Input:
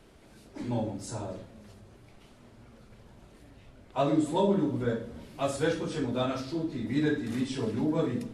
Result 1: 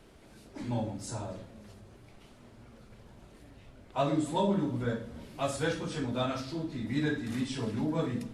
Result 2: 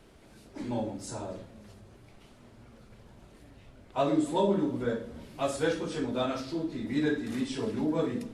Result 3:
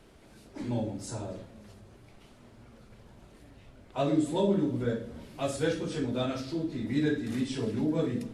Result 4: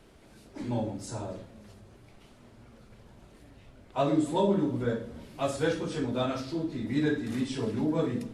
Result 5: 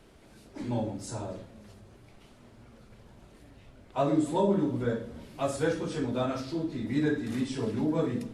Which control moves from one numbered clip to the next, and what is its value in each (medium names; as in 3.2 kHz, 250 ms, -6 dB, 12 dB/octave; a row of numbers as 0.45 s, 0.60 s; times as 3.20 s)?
dynamic bell, frequency: 390 Hz, 120 Hz, 1 kHz, 9.4 kHz, 3.3 kHz